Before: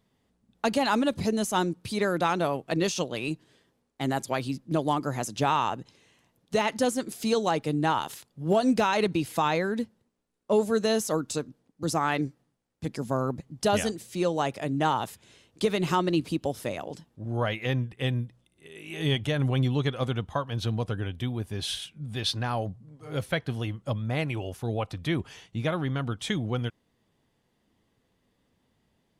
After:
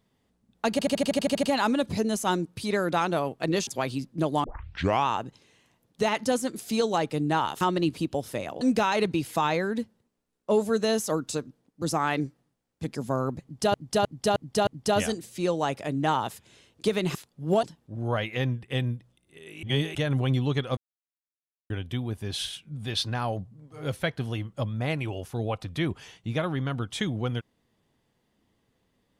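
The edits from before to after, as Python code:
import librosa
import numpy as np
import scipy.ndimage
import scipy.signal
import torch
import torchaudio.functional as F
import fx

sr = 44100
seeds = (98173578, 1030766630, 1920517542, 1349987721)

y = fx.edit(x, sr, fx.stutter(start_s=0.71, slice_s=0.08, count=10),
    fx.cut(start_s=2.95, length_s=1.25),
    fx.tape_start(start_s=4.97, length_s=0.63),
    fx.swap(start_s=8.14, length_s=0.48, other_s=15.92, other_length_s=1.0),
    fx.repeat(start_s=13.44, length_s=0.31, count=5),
    fx.reverse_span(start_s=18.92, length_s=0.32),
    fx.silence(start_s=20.06, length_s=0.93), tone=tone)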